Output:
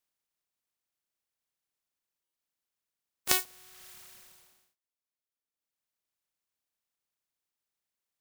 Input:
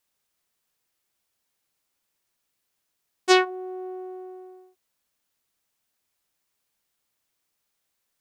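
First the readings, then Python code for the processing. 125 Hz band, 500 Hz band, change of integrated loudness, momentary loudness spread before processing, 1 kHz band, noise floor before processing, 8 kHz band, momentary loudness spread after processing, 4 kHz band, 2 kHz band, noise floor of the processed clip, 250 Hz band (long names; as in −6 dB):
can't be measured, −21.5 dB, −4.5 dB, 20 LU, −15.5 dB, −78 dBFS, +3.5 dB, 15 LU, −6.5 dB, −11.0 dB, below −85 dBFS, −21.0 dB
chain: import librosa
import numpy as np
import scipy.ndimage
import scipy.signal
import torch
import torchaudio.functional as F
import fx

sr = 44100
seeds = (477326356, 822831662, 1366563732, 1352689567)

y = fx.spec_flatten(x, sr, power=0.14)
y = fx.dereverb_blind(y, sr, rt60_s=1.7)
y = fx.buffer_glitch(y, sr, at_s=(2.23,), block=512, repeats=8)
y = y * librosa.db_to_amplitude(-7.5)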